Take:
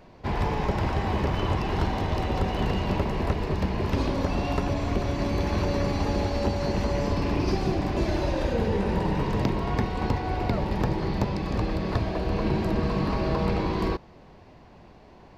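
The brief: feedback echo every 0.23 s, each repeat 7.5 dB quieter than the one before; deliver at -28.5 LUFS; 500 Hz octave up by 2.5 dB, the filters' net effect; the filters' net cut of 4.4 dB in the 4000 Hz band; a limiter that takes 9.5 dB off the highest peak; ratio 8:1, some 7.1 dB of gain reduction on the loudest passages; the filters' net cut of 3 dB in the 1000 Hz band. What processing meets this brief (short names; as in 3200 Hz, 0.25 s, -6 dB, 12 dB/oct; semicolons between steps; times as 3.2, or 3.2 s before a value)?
bell 500 Hz +4.5 dB; bell 1000 Hz -5.5 dB; bell 4000 Hz -5.5 dB; compressor 8:1, threshold -27 dBFS; limiter -27 dBFS; feedback echo 0.23 s, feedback 42%, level -7.5 dB; gain +7 dB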